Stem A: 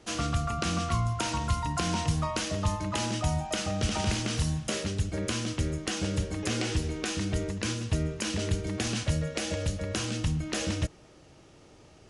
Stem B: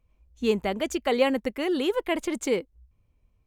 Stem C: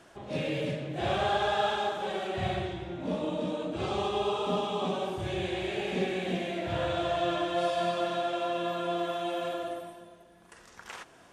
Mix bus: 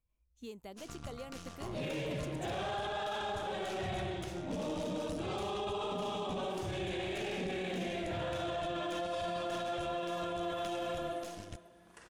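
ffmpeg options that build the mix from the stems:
-filter_complex "[0:a]highshelf=f=8.4k:g=4.5,aeval=exprs='0.266*(cos(1*acos(clip(val(0)/0.266,-1,1)))-cos(1*PI/2))+0.0266*(cos(4*acos(clip(val(0)/0.266,-1,1)))-cos(4*PI/2))+0.0188*(cos(7*acos(clip(val(0)/0.266,-1,1)))-cos(7*PI/2))+0.0133*(cos(8*acos(clip(val(0)/0.266,-1,1)))-cos(8*PI/2))':c=same,adelay=700,volume=-17dB[a];[1:a]acrossover=split=1300|2900[b][c][d];[b]acompressor=threshold=-27dB:ratio=4[e];[c]acompressor=threshold=-56dB:ratio=4[f];[d]acompressor=threshold=-44dB:ratio=4[g];[e][f][g]amix=inputs=3:normalize=0,highshelf=f=4.1k:g=9.5,volume=-17dB[h];[2:a]adelay=1450,volume=-3dB[i];[a][h][i]amix=inputs=3:normalize=0,alimiter=level_in=5.5dB:limit=-24dB:level=0:latency=1:release=10,volume=-5.5dB"

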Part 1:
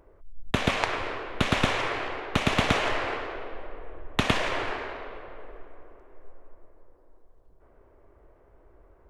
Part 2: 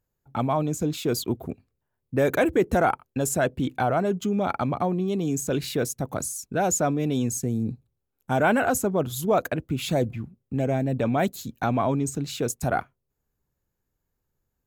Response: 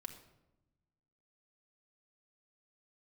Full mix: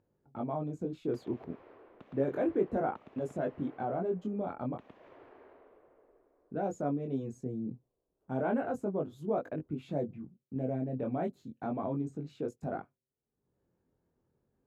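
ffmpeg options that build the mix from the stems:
-filter_complex "[0:a]acompressor=threshold=-29dB:ratio=10,adelay=600,volume=-16dB[a];[1:a]flanger=delay=19.5:depth=4.1:speed=0.32,acompressor=mode=upward:threshold=-50dB:ratio=2.5,volume=-4.5dB,asplit=3[b][c][d];[b]atrim=end=4.78,asetpts=PTS-STARTPTS,afade=t=out:st=4.776:d=0.004:c=hsin[e];[c]atrim=start=4.78:end=6.47,asetpts=PTS-STARTPTS,volume=0[f];[d]atrim=start=6.47,asetpts=PTS-STARTPTS,afade=t=in:d=0.004:c=hsin[g];[e][f][g]concat=n=3:v=0:a=1[h];[a][h]amix=inputs=2:normalize=0,bandpass=f=330:t=q:w=0.74:csg=0"

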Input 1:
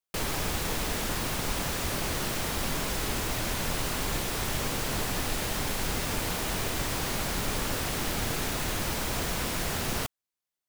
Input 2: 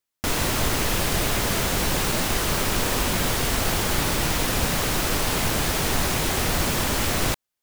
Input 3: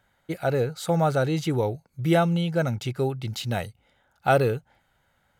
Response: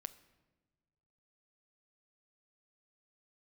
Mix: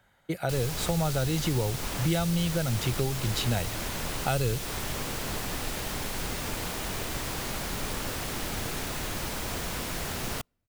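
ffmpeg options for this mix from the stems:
-filter_complex "[0:a]adelay=350,volume=-3dB,asplit=2[a][b];[b]volume=-24dB[c];[2:a]volume=2dB[d];[3:a]atrim=start_sample=2205[e];[c][e]afir=irnorm=-1:irlink=0[f];[a][d][f]amix=inputs=3:normalize=0,acrossover=split=130|3000[g][h][i];[h]acompressor=threshold=-28dB:ratio=6[j];[g][j][i]amix=inputs=3:normalize=0"

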